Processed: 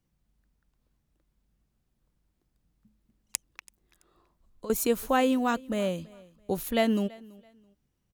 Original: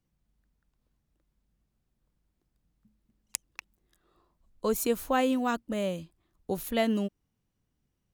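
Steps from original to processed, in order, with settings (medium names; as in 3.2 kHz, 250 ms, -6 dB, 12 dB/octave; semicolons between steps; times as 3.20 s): 3.47–4.70 s: compression 3:1, threshold -46 dBFS, peak gain reduction 15.5 dB; on a send: feedback delay 332 ms, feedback 27%, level -23 dB; on the sum: trim +2 dB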